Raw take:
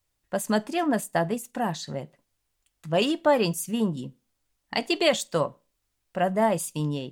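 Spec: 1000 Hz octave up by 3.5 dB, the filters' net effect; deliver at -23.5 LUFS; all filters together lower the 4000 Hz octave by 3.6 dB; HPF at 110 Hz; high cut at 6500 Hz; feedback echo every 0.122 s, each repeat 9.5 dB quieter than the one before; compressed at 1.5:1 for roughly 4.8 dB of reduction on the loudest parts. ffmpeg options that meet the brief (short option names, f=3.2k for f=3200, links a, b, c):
-af "highpass=110,lowpass=6.5k,equalizer=f=1k:t=o:g=5,equalizer=f=4k:t=o:g=-5,acompressor=threshold=-28dB:ratio=1.5,aecho=1:1:122|244|366|488:0.335|0.111|0.0365|0.012,volume=5.5dB"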